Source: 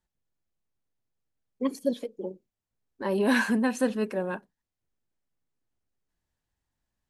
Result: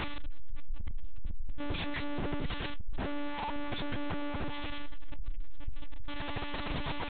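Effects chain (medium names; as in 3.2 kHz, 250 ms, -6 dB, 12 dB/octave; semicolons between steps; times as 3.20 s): one-bit comparator; pitch shift -10 st; de-hum 45.12 Hz, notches 3; monotone LPC vocoder at 8 kHz 290 Hz; peak limiter -32.5 dBFS, peak gain reduction 16.5 dB; trim +7 dB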